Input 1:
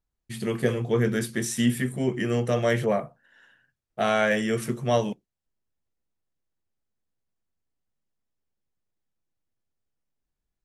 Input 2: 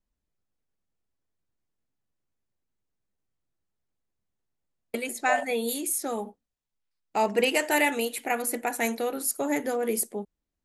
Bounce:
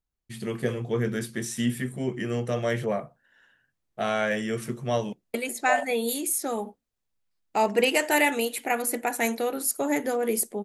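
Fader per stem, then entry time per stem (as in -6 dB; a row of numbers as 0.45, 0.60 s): -3.5, +1.5 dB; 0.00, 0.40 s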